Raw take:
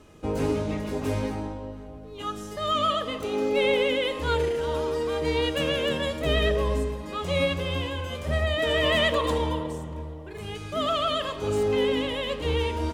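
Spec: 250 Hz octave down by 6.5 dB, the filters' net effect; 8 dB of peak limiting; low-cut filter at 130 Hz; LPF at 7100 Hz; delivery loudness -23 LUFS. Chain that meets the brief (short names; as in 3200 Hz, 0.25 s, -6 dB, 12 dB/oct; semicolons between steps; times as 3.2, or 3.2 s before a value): HPF 130 Hz; LPF 7100 Hz; bell 250 Hz -8 dB; gain +7 dB; limiter -13.5 dBFS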